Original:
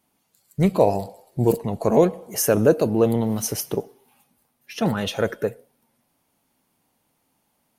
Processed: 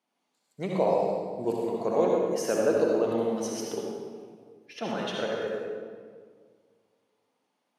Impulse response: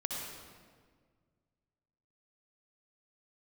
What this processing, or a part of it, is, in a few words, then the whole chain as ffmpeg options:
supermarket ceiling speaker: -filter_complex "[0:a]highpass=300,lowpass=5900[link_01];[1:a]atrim=start_sample=2205[link_02];[link_01][link_02]afir=irnorm=-1:irlink=0,volume=-7.5dB"

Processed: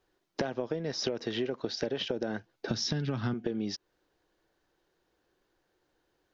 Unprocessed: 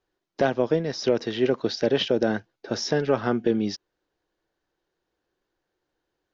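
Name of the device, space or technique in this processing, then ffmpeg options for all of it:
serial compression, leveller first: -filter_complex "[0:a]asettb=1/sr,asplit=3[link_01][link_02][link_03];[link_01]atrim=end=2.684[link_04];[link_02]atrim=start=2.68:end=3.34,asetpts=PTS-STARTPTS,afade=type=in:duration=0.004:curve=qsin,afade=type=out:start_time=0.656:duration=0.004:curve=qsin,equalizer=frequency=125:width_type=o:width=1:gain=12,equalizer=frequency=250:width_type=o:width=1:gain=6,equalizer=frequency=500:width_type=o:width=1:gain=-9,equalizer=frequency=4000:width_type=o:width=1:gain=8[link_05];[link_03]atrim=start=3.336[link_06];[link_04][link_05]acrossfade=duration=0.004:curve1=hsin:curve2=qsin[link_07];[link_07][link_06]acrossfade=duration=0.004:curve1=qsin:curve2=hsin,acompressor=threshold=-22dB:ratio=2.5,acompressor=threshold=-34dB:ratio=6,volume=4.5dB"

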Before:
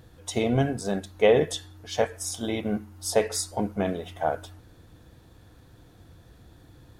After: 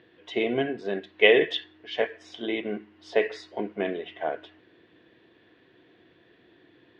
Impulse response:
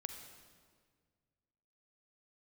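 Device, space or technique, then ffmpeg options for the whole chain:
phone earpiece: -filter_complex "[0:a]asettb=1/sr,asplit=3[link_01][link_02][link_03];[link_01]atrim=end=1.184[link_04];[link_02]atrim=start=1.18:end=1.64,asetpts=PTS-STARTPTS,afade=type=in:duration=0.004:curve=qsin,afade=type=out:start_time=0.456:duration=0.004:curve=qsin,equalizer=frequency=3000:width_type=o:width=1.7:gain=7[link_05];[link_03]atrim=start=1.636[link_06];[link_04][link_05]acrossfade=duration=0.004:curve1=hsin:curve2=qsin[link_07];[link_07][link_06]acrossfade=duration=0.004:curve1=qsin:curve2=hsin,highpass=350,equalizer=frequency=370:width_type=q:width=4:gain=7,equalizer=frequency=530:width_type=q:width=4:gain=-5,equalizer=frequency=830:width_type=q:width=4:gain=-10,equalizer=frequency=1300:width_type=q:width=4:gain=-9,equalizer=frequency=1900:width_type=q:width=4:gain=6,equalizer=frequency=2900:width_type=q:width=4:gain=5,lowpass=frequency=3300:width=0.5412,lowpass=frequency=3300:width=1.3066,volume=1.5dB"

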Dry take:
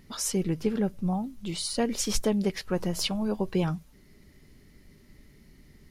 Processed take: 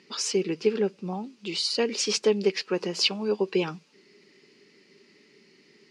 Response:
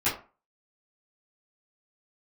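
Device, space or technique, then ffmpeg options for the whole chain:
television speaker: -af "highpass=frequency=220:width=0.5412,highpass=frequency=220:width=1.3066,equalizer=frequency=260:width_type=q:width=4:gain=-6,equalizer=frequency=410:width_type=q:width=4:gain=8,equalizer=frequency=660:width_type=q:width=4:gain=-8,equalizer=frequency=2600:width_type=q:width=4:gain=10,equalizer=frequency=4700:width_type=q:width=4:gain=8,lowpass=frequency=7200:width=0.5412,lowpass=frequency=7200:width=1.3066,volume=1.5dB"

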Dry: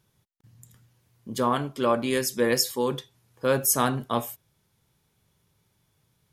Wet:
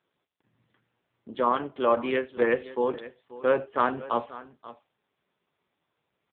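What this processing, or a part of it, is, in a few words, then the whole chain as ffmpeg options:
satellite phone: -filter_complex "[0:a]asettb=1/sr,asplit=3[link_01][link_02][link_03];[link_01]atrim=end=1.354[link_04];[link_02]atrim=start=1.35:end=2.4,asetpts=PTS-STARTPTS,afade=type=in:duration=0.004:curve=qsin,afade=type=out:start_time=1.046:duration=0.004:curve=qsin,highpass=frequency=70:width=0.5412,highpass=frequency=70:width=1.3066[link_05];[link_03]atrim=start=2.396[link_06];[link_04][link_05]acrossfade=duration=0.004:curve1=hsin:curve2=qsin[link_07];[link_07][link_06]acrossfade=duration=0.004:curve1=qsin:curve2=hsin,highpass=320,lowpass=3000,aecho=1:1:533:0.141,volume=2dB" -ar 8000 -c:a libopencore_amrnb -b:a 5900

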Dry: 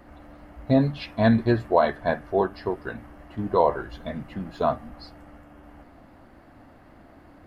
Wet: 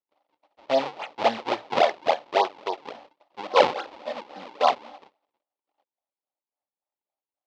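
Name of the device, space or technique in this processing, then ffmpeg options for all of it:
circuit-bent sampling toy: -filter_complex "[0:a]agate=range=-44dB:threshold=-42dB:ratio=16:detection=peak,asettb=1/sr,asplit=3[link_01][link_02][link_03];[link_01]atrim=end=3.484[link_04];[link_02]atrim=start=3.48:end=4.97,asetpts=PTS-STARTPTS,afade=type=in:duration=0.004:curve=qsin,afade=type=out:start_time=1.486:duration=0.004:curve=qsin,aecho=1:1:3.8:0.88,atrim=end_sample=65709[link_05];[link_03]atrim=start=4.966[link_06];[link_04][link_05]acrossfade=duration=0.004:curve1=hsin:curve2=qsin[link_07];[link_07][link_06]acrossfade=duration=0.004:curve1=qsin:curve2=hsin,equalizer=frequency=160:width_type=o:width=2.7:gain=-5.5,acrusher=samples=41:mix=1:aa=0.000001:lfo=1:lforange=65.6:lforate=3.6,highpass=570,equalizer=frequency=570:width_type=q:width=4:gain=5,equalizer=frequency=830:width_type=q:width=4:gain=8,equalizer=frequency=1600:width_type=q:width=4:gain=-8,lowpass=frequency=4400:width=0.5412,lowpass=frequency=4400:width=1.3066,volume=3dB"

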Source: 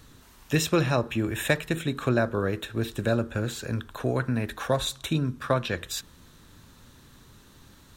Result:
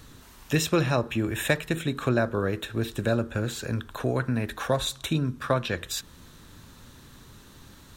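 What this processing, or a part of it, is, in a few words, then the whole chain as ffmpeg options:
parallel compression: -filter_complex "[0:a]asplit=2[link_01][link_02];[link_02]acompressor=threshold=-37dB:ratio=6,volume=-4dB[link_03];[link_01][link_03]amix=inputs=2:normalize=0,volume=-1dB"

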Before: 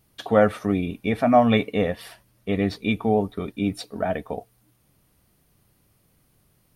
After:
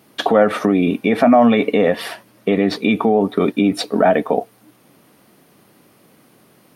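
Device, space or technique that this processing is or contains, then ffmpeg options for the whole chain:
mastering chain: -af "highpass=51,equalizer=frequency=240:width_type=o:width=1.1:gain=3.5,highshelf=frequency=4000:gain=-9,acompressor=threshold=-19dB:ratio=2.5,alimiter=level_in=18.5dB:limit=-1dB:release=50:level=0:latency=1,highpass=260,volume=-1.5dB"

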